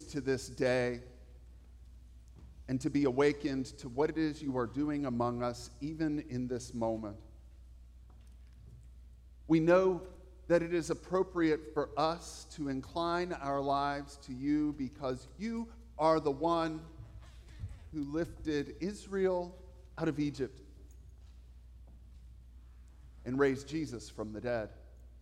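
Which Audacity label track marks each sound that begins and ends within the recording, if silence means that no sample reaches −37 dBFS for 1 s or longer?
2.690000	7.120000	sound
9.500000	20.470000	sound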